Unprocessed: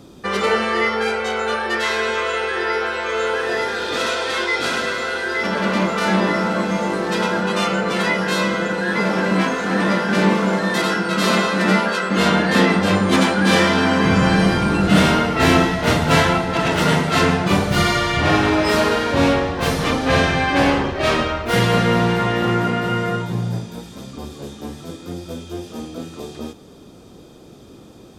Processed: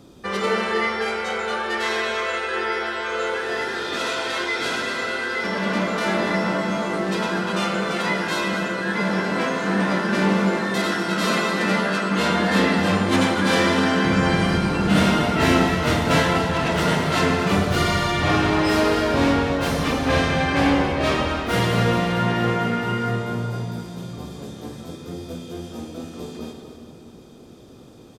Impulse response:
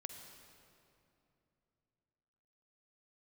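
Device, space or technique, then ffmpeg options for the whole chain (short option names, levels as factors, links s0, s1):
cave: -filter_complex "[0:a]aecho=1:1:245:0.266[s0];[1:a]atrim=start_sample=2205[s1];[s0][s1]afir=irnorm=-1:irlink=0"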